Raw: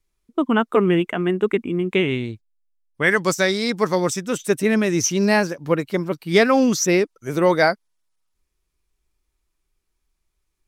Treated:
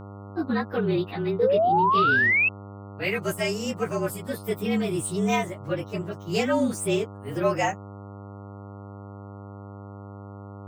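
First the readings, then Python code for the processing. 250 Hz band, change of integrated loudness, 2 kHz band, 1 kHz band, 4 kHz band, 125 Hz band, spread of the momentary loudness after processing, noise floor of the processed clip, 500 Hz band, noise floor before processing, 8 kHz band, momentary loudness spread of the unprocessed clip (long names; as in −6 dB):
−7.0 dB, −5.0 dB, −2.5 dB, 0.0 dB, −7.5 dB, −4.0 dB, 22 LU, −41 dBFS, −6.0 dB, −75 dBFS, −10.5 dB, 8 LU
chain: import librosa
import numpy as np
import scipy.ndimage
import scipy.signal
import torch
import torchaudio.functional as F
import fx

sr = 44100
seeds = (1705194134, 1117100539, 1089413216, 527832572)

y = fx.partial_stretch(x, sr, pct=112)
y = fx.spec_paint(y, sr, seeds[0], shape='rise', start_s=1.39, length_s=1.1, low_hz=460.0, high_hz=2700.0, level_db=-15.0)
y = fx.dmg_buzz(y, sr, base_hz=100.0, harmonics=14, level_db=-35.0, tilt_db=-5, odd_only=False)
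y = y * librosa.db_to_amplitude(-5.5)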